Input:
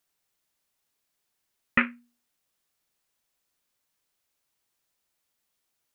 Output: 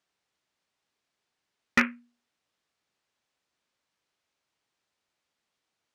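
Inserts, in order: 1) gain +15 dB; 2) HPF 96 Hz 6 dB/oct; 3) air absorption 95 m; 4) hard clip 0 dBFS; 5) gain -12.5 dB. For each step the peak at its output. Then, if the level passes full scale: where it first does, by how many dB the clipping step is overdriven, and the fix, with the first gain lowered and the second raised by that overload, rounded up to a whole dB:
+9.5, +9.5, +9.0, 0.0, -12.5 dBFS; step 1, 9.0 dB; step 1 +6 dB, step 5 -3.5 dB

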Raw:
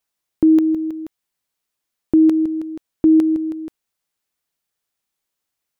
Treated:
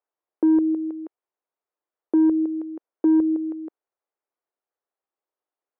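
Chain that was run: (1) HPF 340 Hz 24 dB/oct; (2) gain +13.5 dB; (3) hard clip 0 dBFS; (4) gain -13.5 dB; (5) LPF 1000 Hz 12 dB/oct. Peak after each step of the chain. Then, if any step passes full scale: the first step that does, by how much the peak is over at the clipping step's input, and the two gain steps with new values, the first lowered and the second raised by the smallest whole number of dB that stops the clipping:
-7.0, +6.5, 0.0, -13.5, -13.0 dBFS; step 2, 6.5 dB; step 2 +6.5 dB, step 4 -6.5 dB

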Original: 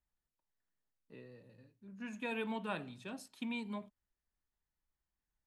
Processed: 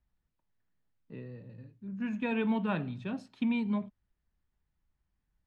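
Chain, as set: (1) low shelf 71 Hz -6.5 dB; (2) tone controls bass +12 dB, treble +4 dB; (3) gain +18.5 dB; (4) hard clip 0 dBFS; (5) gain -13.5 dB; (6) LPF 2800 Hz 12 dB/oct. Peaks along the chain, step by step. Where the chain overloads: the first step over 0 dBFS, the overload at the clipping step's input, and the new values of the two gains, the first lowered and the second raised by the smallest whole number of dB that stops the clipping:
-25.0, -23.0, -4.5, -4.5, -18.0, -18.5 dBFS; no overload

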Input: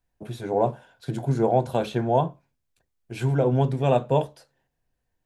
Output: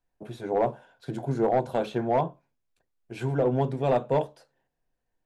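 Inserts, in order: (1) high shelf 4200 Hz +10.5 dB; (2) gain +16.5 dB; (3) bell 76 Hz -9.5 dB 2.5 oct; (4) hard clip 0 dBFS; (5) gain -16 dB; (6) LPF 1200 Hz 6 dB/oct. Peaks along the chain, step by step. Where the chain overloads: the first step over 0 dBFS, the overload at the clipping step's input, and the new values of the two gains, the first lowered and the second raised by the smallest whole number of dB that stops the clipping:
-8.0, +8.5, +7.0, 0.0, -16.0, -16.0 dBFS; step 2, 7.0 dB; step 2 +9.5 dB, step 5 -9 dB

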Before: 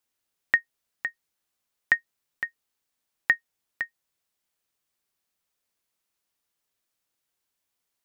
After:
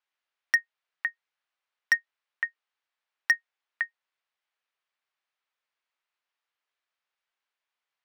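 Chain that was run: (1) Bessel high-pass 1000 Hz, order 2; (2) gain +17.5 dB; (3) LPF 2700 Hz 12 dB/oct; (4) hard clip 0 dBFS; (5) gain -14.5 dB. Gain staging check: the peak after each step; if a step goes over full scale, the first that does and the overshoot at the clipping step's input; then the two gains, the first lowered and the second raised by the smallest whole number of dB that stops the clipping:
-8.5, +9.0, +8.0, 0.0, -14.5 dBFS; step 2, 8.0 dB; step 2 +9.5 dB, step 5 -6.5 dB

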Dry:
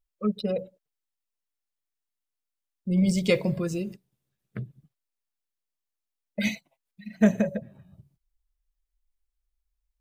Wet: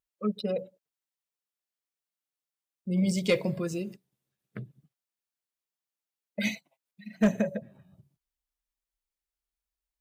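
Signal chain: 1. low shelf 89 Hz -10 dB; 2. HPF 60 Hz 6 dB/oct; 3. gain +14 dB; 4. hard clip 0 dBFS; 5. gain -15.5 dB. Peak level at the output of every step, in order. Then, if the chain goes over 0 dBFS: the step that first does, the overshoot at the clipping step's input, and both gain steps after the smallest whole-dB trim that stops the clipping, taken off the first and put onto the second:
-10.0, -9.5, +4.5, 0.0, -15.5 dBFS; step 3, 4.5 dB; step 3 +9 dB, step 5 -10.5 dB

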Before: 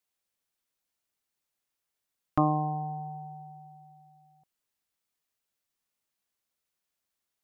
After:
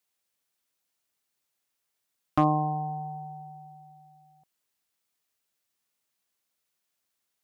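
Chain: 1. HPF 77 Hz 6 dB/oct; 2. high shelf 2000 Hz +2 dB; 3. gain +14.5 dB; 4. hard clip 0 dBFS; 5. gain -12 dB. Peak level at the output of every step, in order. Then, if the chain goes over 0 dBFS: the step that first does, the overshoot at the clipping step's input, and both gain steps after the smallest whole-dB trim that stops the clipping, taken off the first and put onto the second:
-11.5, -11.0, +3.5, 0.0, -12.0 dBFS; step 3, 3.5 dB; step 3 +10.5 dB, step 5 -8 dB

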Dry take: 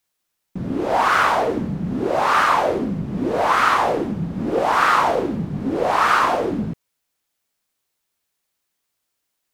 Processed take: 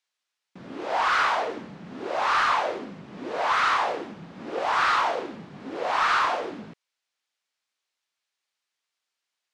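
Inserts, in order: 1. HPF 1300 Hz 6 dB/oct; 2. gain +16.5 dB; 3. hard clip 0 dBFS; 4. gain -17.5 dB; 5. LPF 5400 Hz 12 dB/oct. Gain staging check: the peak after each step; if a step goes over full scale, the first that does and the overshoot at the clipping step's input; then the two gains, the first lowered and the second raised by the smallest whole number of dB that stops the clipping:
-6.5, +10.0, 0.0, -17.5, -17.0 dBFS; step 2, 10.0 dB; step 2 +6.5 dB, step 4 -7.5 dB

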